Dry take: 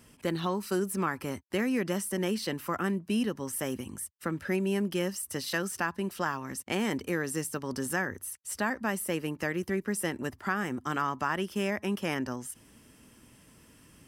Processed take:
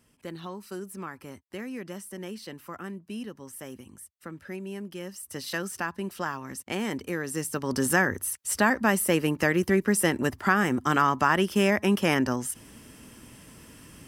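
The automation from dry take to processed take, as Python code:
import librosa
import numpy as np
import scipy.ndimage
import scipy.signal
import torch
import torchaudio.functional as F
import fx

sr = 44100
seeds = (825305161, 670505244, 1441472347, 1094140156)

y = fx.gain(x, sr, db=fx.line((5.0, -8.0), (5.47, -0.5), (7.23, -0.5), (7.85, 8.0)))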